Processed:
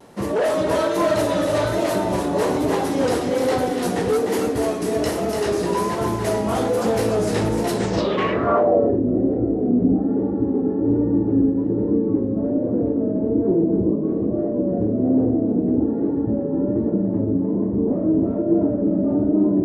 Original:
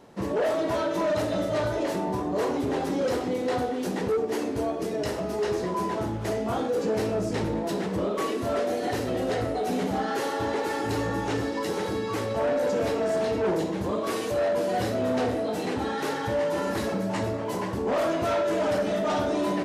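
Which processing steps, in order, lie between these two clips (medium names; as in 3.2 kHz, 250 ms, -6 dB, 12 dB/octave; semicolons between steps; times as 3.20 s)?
two-band feedback delay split 360 Hz, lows 403 ms, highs 298 ms, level -5 dB; low-pass sweep 11 kHz -> 300 Hz, 7.72–9.00 s; vibrato 1.2 Hz 53 cents; trim +5 dB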